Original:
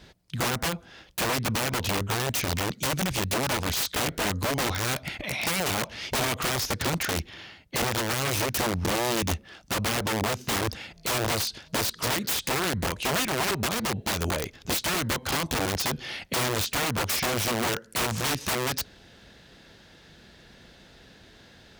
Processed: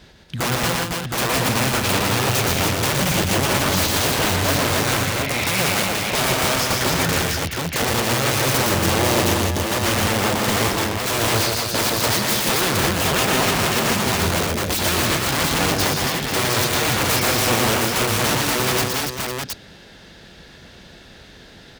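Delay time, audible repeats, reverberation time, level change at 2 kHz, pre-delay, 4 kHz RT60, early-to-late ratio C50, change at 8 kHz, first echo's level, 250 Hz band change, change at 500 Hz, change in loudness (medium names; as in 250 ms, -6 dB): 117 ms, 5, no reverb, +8.5 dB, no reverb, no reverb, no reverb, +8.5 dB, -3.5 dB, +8.5 dB, +8.5 dB, +8.5 dB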